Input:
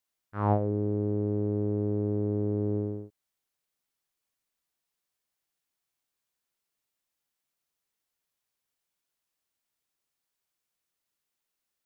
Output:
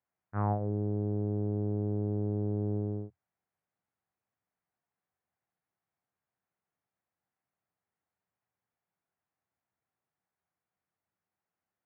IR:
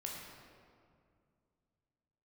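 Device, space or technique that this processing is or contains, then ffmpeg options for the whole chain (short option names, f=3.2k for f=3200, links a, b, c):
bass amplifier: -af "acompressor=threshold=-31dB:ratio=4,highpass=71,equalizer=f=84:t=q:w=4:g=8,equalizer=f=120:t=q:w=4:g=7,equalizer=f=180:t=q:w=4:g=7,equalizer=f=750:t=q:w=4:g=6,lowpass=f=2k:w=0.5412,lowpass=f=2k:w=1.3066"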